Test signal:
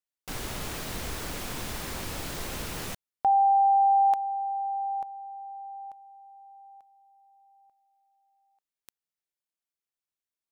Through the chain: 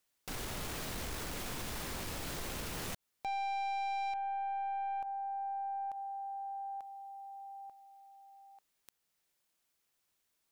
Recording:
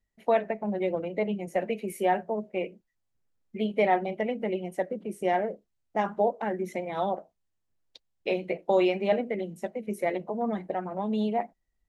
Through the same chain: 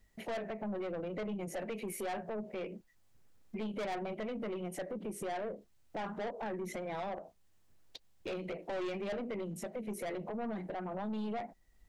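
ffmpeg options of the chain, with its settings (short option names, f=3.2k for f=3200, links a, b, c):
-af "aeval=exprs='(tanh(25.1*val(0)+0.2)-tanh(0.2))/25.1':c=same,alimiter=level_in=8.5dB:limit=-24dB:level=0:latency=1:release=440,volume=-8.5dB,acompressor=threshold=-53dB:ratio=3:attack=0.32:release=121:knee=6:detection=peak,volume=13dB"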